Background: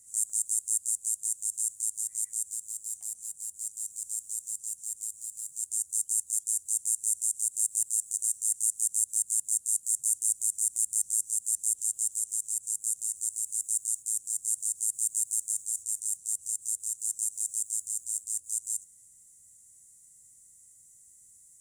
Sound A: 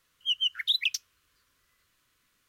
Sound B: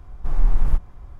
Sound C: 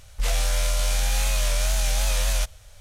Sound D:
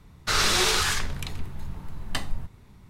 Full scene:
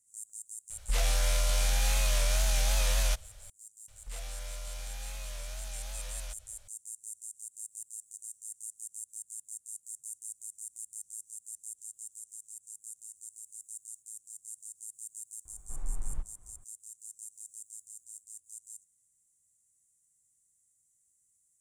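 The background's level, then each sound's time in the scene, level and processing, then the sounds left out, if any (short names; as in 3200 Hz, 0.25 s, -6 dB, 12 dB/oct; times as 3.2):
background -15.5 dB
0.7 add C -4.5 dB
3.88 add C -10 dB + compressor 1.5:1, threshold -41 dBFS
15.45 add B -17 dB
not used: A, D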